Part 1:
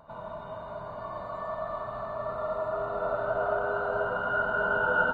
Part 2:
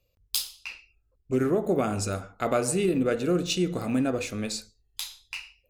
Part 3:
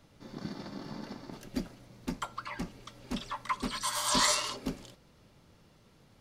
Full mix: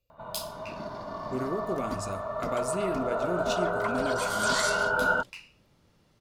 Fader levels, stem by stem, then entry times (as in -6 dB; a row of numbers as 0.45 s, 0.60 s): 0.0 dB, -8.0 dB, -3.5 dB; 0.10 s, 0.00 s, 0.35 s